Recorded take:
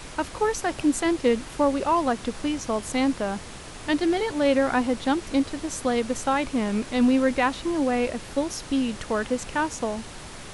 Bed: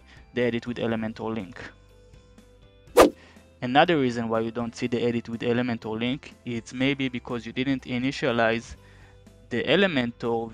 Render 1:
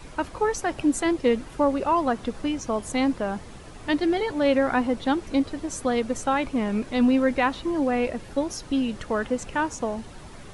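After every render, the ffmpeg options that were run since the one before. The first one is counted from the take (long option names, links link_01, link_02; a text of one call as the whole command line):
ffmpeg -i in.wav -af "afftdn=noise_reduction=9:noise_floor=-40" out.wav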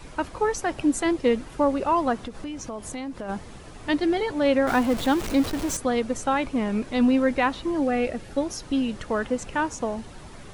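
ffmpeg -i in.wav -filter_complex "[0:a]asplit=3[link_01][link_02][link_03];[link_01]afade=type=out:start_time=2.2:duration=0.02[link_04];[link_02]acompressor=threshold=-31dB:ratio=4:attack=3.2:release=140:knee=1:detection=peak,afade=type=in:start_time=2.2:duration=0.02,afade=type=out:start_time=3.28:duration=0.02[link_05];[link_03]afade=type=in:start_time=3.28:duration=0.02[link_06];[link_04][link_05][link_06]amix=inputs=3:normalize=0,asettb=1/sr,asplit=3[link_07][link_08][link_09];[link_07]atrim=end=4.674[link_10];[link_08]atrim=start=4.67:end=5.77,asetpts=PTS-STARTPTS,afade=type=in:duration=0.004:curve=qsin,afade=type=out:start_time=1.096:duration=0.004:curve=qsin,aeval=exprs='val(0)+0.5*0.0422*sgn(val(0))':channel_layout=same[link_11];[link_09]atrim=start=5.766[link_12];[link_10][link_11]acrossfade=duration=0.004:curve1=hsin:curve2=qsin[link_13];[link_13][link_12]acrossfade=duration=0.004:curve1=qsin:curve2=hsin,asettb=1/sr,asplit=3[link_14][link_15][link_16];[link_14]atrim=end=7.814[link_17];[link_15]atrim=start=7.81:end=8.46,asetpts=PTS-STARTPTS,afade=type=in:duration=0.004:curve=qsin,afade=type=out:start_time=0.646:duration=0.004:curve=qsin,asuperstop=centerf=1000:order=4:qfactor=6.7[link_18];[link_16]atrim=start=8.456[link_19];[link_17][link_18]acrossfade=duration=0.004:curve1=hsin:curve2=qsin[link_20];[link_20][link_19]acrossfade=duration=0.004:curve1=qsin:curve2=hsin" out.wav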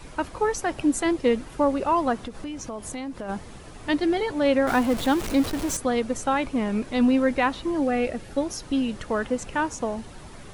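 ffmpeg -i in.wav -af "equalizer=frequency=11000:width=1.5:gain=2.5" out.wav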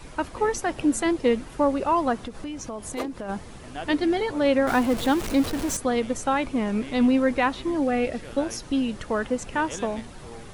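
ffmpeg -i in.wav -i bed.wav -filter_complex "[1:a]volume=-17.5dB[link_01];[0:a][link_01]amix=inputs=2:normalize=0" out.wav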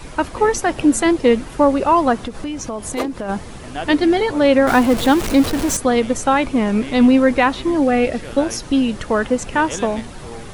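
ffmpeg -i in.wav -af "volume=8dB,alimiter=limit=-3dB:level=0:latency=1" out.wav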